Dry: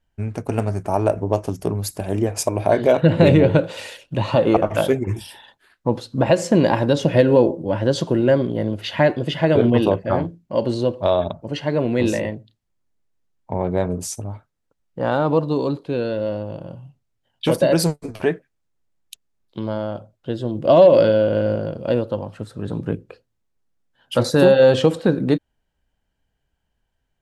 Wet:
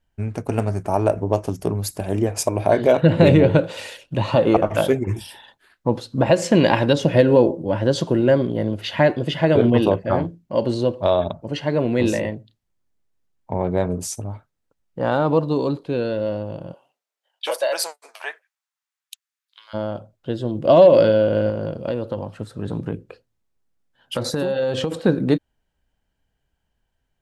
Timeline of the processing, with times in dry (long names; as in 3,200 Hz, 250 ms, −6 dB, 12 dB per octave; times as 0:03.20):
0:06.42–0:06.93: parametric band 2,700 Hz +7.5 dB 1.5 octaves
0:16.72–0:19.73: high-pass filter 420 Hz → 1,500 Hz 24 dB per octave
0:21.49–0:24.92: downward compressor, threshold −19 dBFS